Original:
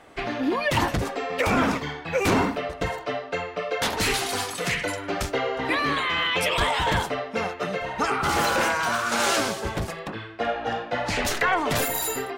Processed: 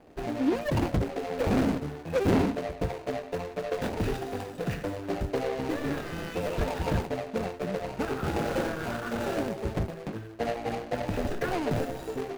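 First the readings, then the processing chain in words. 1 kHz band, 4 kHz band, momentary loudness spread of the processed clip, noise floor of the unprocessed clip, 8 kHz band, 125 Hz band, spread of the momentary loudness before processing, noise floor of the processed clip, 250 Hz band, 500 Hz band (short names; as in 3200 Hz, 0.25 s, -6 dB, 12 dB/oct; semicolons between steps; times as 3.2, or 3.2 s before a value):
-10.0 dB, -14.5 dB, 8 LU, -38 dBFS, -16.0 dB, +0.5 dB, 8 LU, -43 dBFS, -0.5 dB, -2.5 dB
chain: median filter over 41 samples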